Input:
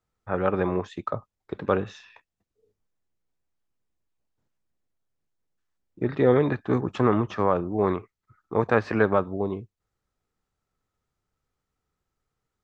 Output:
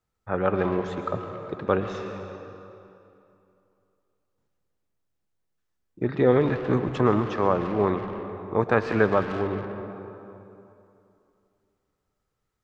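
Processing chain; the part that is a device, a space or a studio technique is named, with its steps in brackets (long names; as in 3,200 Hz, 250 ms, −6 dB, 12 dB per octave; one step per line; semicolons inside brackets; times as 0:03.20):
saturated reverb return (on a send at −4 dB: convolution reverb RT60 2.6 s, pre-delay 107 ms + soft clipping −25 dBFS, distortion −9 dB)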